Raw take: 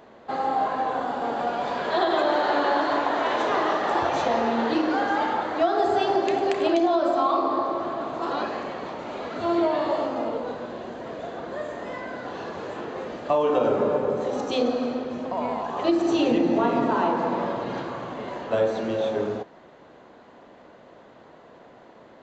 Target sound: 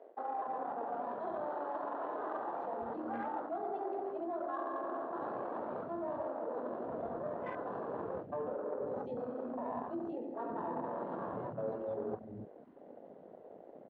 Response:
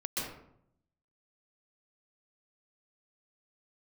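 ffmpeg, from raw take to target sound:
-filter_complex "[0:a]bandreject=frequency=374.9:width_type=h:width=4,bandreject=frequency=749.8:width_type=h:width=4,bandreject=frequency=1124.7:width_type=h:width=4,bandreject=frequency=1499.6:width_type=h:width=4,bandreject=frequency=1874.5:width_type=h:width=4,bandreject=frequency=2249.4:width_type=h:width=4,bandreject=frequency=2624.3:width_type=h:width=4,bandreject=frequency=2999.2:width_type=h:width=4,bandreject=frequency=3374.1:width_type=h:width=4,bandreject=frequency=3749:width_type=h:width=4,bandreject=frequency=4123.9:width_type=h:width=4,bandreject=frequency=4498.8:width_type=h:width=4,bandreject=frequency=4873.7:width_type=h:width=4,bandreject=frequency=5248.6:width_type=h:width=4,bandreject=frequency=5623.5:width_type=h:width=4,bandreject=frequency=5998.4:width_type=h:width=4,bandreject=frequency=6373.3:width_type=h:width=4,bandreject=frequency=6748.2:width_type=h:width=4,bandreject=frequency=7123.1:width_type=h:width=4,bandreject=frequency=7498:width_type=h:width=4,bandreject=frequency=7872.9:width_type=h:width=4,bandreject=frequency=8247.8:width_type=h:width=4,bandreject=frequency=8622.7:width_type=h:width=4,bandreject=frequency=8997.6:width_type=h:width=4,bandreject=frequency=9372.5:width_type=h:width=4,bandreject=frequency=9747.4:width_type=h:width=4,bandreject=frequency=10122.3:width_type=h:width=4,bandreject=frequency=10497.2:width_type=h:width=4,bandreject=frequency=10872.1:width_type=h:width=4,bandreject=frequency=11247:width_type=h:width=4,bandreject=frequency=11621.9:width_type=h:width=4,areverse,acompressor=threshold=-35dB:ratio=10,areverse,afwtdn=0.01,acrossover=split=270[link_01][link_02];[link_01]adelay=480[link_03];[link_03][link_02]amix=inputs=2:normalize=0,adynamicsmooth=sensitivity=1.5:basefreq=2400,atempo=1.6,volume=1dB"

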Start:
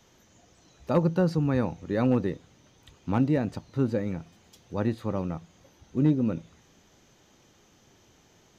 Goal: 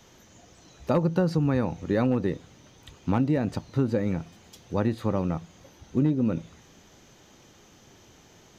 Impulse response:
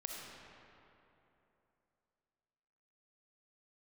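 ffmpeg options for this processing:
-af "acompressor=threshold=-25dB:ratio=5,volume=5.5dB"

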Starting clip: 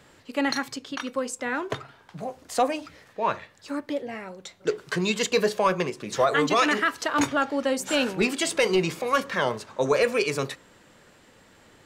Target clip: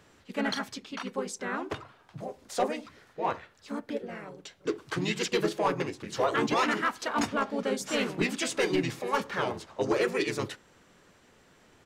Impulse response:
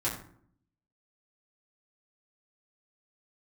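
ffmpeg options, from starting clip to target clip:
-filter_complex "[0:a]asplit=3[link_01][link_02][link_03];[link_02]asetrate=33038,aresample=44100,atempo=1.33484,volume=-7dB[link_04];[link_03]asetrate=35002,aresample=44100,atempo=1.25992,volume=-3dB[link_05];[link_01][link_04][link_05]amix=inputs=3:normalize=0,asoftclip=type=hard:threshold=-11.5dB,volume=-7dB"

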